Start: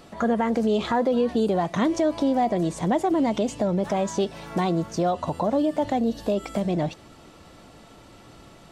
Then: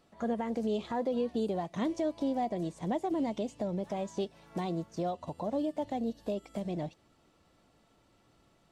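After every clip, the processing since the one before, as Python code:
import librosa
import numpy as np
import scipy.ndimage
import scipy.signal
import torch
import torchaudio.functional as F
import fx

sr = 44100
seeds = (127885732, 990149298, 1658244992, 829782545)

y = fx.dynamic_eq(x, sr, hz=1400.0, q=1.8, threshold_db=-42.0, ratio=4.0, max_db=-6)
y = fx.upward_expand(y, sr, threshold_db=-39.0, expansion=1.5)
y = F.gain(torch.from_numpy(y), -8.5).numpy()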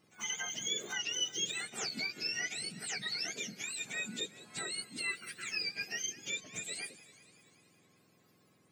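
y = fx.octave_mirror(x, sr, pivot_hz=1200.0)
y = fx.echo_warbled(y, sr, ms=189, feedback_pct=67, rate_hz=2.8, cents=139, wet_db=-18.0)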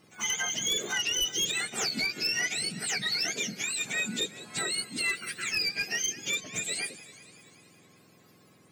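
y = fx.fold_sine(x, sr, drive_db=5, ceiling_db=-23.0)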